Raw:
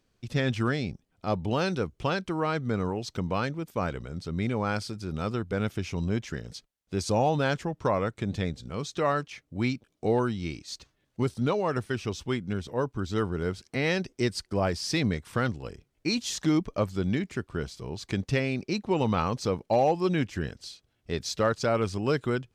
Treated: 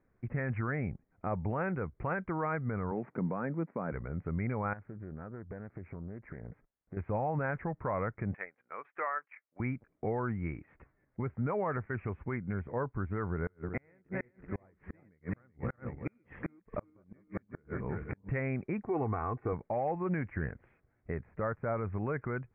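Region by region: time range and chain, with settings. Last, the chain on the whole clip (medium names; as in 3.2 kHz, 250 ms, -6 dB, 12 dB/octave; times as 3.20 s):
2.91–3.92 s: CVSD coder 64 kbps + high-pass 190 Hz 24 dB/octave + tilt EQ -3.5 dB/octave
4.73–6.97 s: compression 8:1, threshold -39 dBFS + peaking EQ 3.1 kHz -12 dB 0.93 oct + loudspeaker Doppler distortion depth 0.34 ms
8.34–9.60 s: high-pass 1 kHz + transient shaper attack +3 dB, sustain -12 dB
13.31–18.29 s: backward echo that repeats 189 ms, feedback 58%, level -5 dB + inverted gate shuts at -19 dBFS, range -38 dB
18.85–19.53 s: high-pass 86 Hz + tape spacing loss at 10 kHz 30 dB + comb 2.7 ms, depth 75%
21.14–21.92 s: de-esser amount 95% + distance through air 440 m
whole clip: steep low-pass 2.2 kHz 72 dB/octave; dynamic bell 310 Hz, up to -6 dB, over -38 dBFS, Q 0.87; peak limiter -24.5 dBFS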